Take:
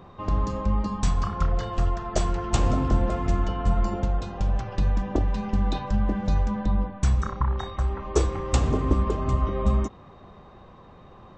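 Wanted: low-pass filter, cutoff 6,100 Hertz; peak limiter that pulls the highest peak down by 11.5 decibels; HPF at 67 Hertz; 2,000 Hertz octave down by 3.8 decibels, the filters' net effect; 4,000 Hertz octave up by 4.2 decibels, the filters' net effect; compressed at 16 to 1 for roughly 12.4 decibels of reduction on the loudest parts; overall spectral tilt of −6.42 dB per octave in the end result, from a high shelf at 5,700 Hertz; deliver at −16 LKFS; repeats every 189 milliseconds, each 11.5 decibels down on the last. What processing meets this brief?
high-pass filter 67 Hz
low-pass filter 6,100 Hz
parametric band 2,000 Hz −7.5 dB
parametric band 4,000 Hz +5 dB
high-shelf EQ 5,700 Hz +8.5 dB
downward compressor 16 to 1, threshold −30 dBFS
brickwall limiter −29 dBFS
repeating echo 189 ms, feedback 27%, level −11.5 dB
level +22 dB

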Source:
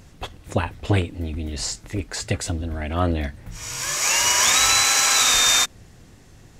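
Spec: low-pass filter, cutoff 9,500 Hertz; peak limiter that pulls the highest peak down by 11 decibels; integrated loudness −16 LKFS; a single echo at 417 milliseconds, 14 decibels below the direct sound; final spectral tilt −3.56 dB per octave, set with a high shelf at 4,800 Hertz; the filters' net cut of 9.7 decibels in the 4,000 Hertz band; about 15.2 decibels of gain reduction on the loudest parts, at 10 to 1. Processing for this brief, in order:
low-pass filter 9,500 Hz
parametric band 4,000 Hz −8 dB
high-shelf EQ 4,800 Hz −8 dB
downward compressor 10 to 1, threshold −31 dBFS
brickwall limiter −31 dBFS
single-tap delay 417 ms −14 dB
level +24 dB

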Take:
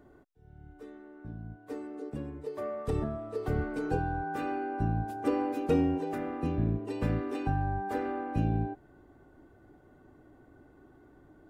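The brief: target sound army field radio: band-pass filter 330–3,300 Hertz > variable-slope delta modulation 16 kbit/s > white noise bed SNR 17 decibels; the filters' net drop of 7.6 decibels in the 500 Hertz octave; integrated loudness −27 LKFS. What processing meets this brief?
band-pass filter 330–3,300 Hz
parametric band 500 Hz −8 dB
variable-slope delta modulation 16 kbit/s
white noise bed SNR 17 dB
level +13 dB

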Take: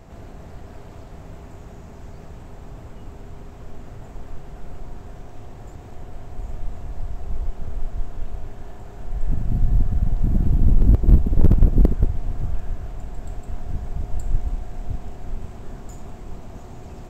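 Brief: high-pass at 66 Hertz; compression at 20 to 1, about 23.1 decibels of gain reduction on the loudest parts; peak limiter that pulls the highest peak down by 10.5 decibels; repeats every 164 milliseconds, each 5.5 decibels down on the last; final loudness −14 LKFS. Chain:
high-pass filter 66 Hz
downward compressor 20 to 1, threshold −35 dBFS
brickwall limiter −34.5 dBFS
repeating echo 164 ms, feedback 53%, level −5.5 dB
level +29 dB

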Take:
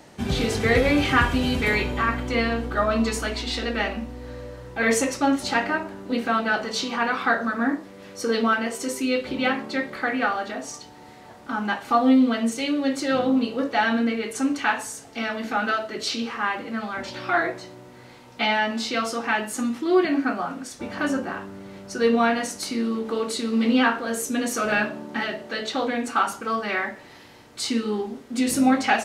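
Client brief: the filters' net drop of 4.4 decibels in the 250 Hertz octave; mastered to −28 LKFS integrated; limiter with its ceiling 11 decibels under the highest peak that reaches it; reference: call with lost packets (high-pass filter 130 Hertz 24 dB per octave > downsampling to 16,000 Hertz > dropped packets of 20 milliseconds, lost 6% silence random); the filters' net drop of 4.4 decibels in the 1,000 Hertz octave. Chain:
parametric band 250 Hz −4.5 dB
parametric band 1,000 Hz −6 dB
brickwall limiter −19.5 dBFS
high-pass filter 130 Hz 24 dB per octave
downsampling to 16,000 Hz
dropped packets of 20 ms, lost 6% silence random
level +2 dB

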